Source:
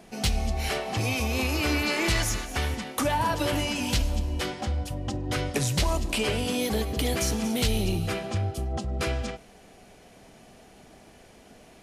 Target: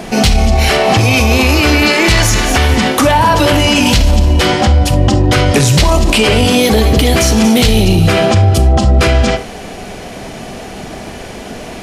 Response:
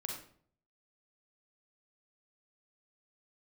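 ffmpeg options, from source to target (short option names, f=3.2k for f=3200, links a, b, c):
-filter_complex "[0:a]asplit=2[a][b];[1:a]atrim=start_sample=2205,afade=t=out:st=0.13:d=0.01,atrim=end_sample=6174,lowpass=7.9k[c];[b][c]afir=irnorm=-1:irlink=0,volume=-3.5dB[d];[a][d]amix=inputs=2:normalize=0,alimiter=level_in=22.5dB:limit=-1dB:release=50:level=0:latency=1,volume=-1dB"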